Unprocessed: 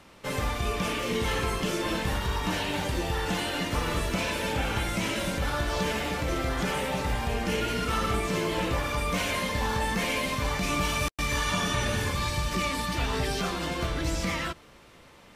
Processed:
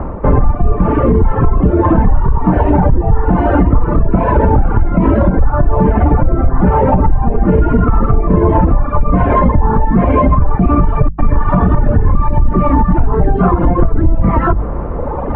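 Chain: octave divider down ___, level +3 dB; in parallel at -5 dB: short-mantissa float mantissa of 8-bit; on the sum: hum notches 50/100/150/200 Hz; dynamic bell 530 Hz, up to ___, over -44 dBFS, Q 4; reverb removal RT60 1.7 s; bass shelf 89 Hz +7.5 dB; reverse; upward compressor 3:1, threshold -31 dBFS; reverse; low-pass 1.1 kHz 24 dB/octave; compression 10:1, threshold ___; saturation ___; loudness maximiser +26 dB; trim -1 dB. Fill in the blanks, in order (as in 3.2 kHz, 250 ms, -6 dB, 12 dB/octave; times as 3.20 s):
2 oct, -5 dB, -28 dBFS, -21 dBFS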